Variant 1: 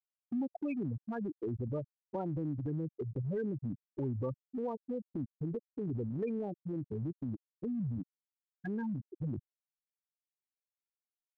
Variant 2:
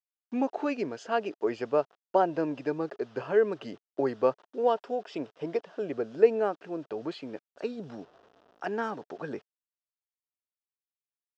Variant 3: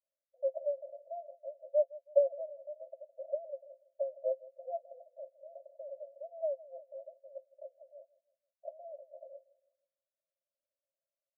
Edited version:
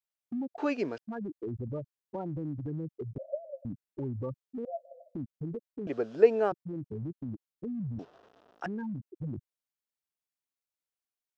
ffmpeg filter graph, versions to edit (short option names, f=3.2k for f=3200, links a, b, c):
-filter_complex "[1:a]asplit=3[a][b][c];[2:a]asplit=2[d][e];[0:a]asplit=6[f][g][h][i][j][k];[f]atrim=end=0.582[l];[a]atrim=start=0.578:end=0.982[m];[g]atrim=start=0.978:end=3.182[n];[d]atrim=start=3.178:end=3.652[o];[h]atrim=start=3.648:end=4.652[p];[e]atrim=start=4.648:end=5.152[q];[i]atrim=start=5.148:end=5.872[r];[b]atrim=start=5.868:end=6.522[s];[j]atrim=start=6.518:end=7.992[t];[c]atrim=start=7.988:end=8.662[u];[k]atrim=start=8.658[v];[l][m]acrossfade=d=0.004:c1=hsin:c2=hsin[w];[w][n]acrossfade=d=0.004:c1=hsin:c2=hsin[x];[x][o]acrossfade=d=0.004:c1=hsin:c2=hsin[y];[y][p]acrossfade=d=0.004:c1=hsin:c2=hsin[z];[z][q]acrossfade=d=0.004:c1=hsin:c2=hsin[aa];[aa][r]acrossfade=d=0.004:c1=hsin:c2=hsin[ab];[ab][s]acrossfade=d=0.004:c1=hsin:c2=hsin[ac];[ac][t]acrossfade=d=0.004:c1=hsin:c2=hsin[ad];[ad][u]acrossfade=d=0.004:c1=hsin:c2=hsin[ae];[ae][v]acrossfade=d=0.004:c1=hsin:c2=hsin"